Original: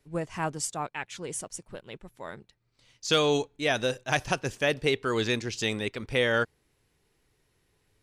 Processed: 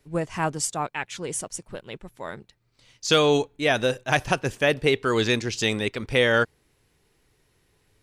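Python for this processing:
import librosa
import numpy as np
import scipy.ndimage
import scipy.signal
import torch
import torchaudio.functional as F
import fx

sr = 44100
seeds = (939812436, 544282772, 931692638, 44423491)

y = fx.peak_eq(x, sr, hz=5600.0, db=-4.5, octaves=1.2, at=(3.13, 4.95))
y = y * librosa.db_to_amplitude(5.0)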